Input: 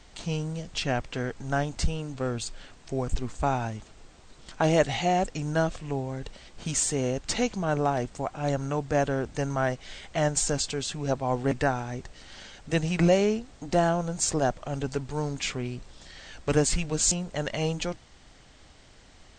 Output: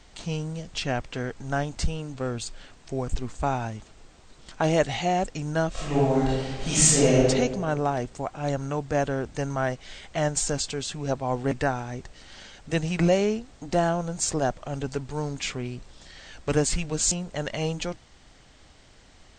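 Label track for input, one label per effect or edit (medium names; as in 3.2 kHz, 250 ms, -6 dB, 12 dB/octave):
5.710000	7.240000	reverb throw, RT60 1.3 s, DRR -10.5 dB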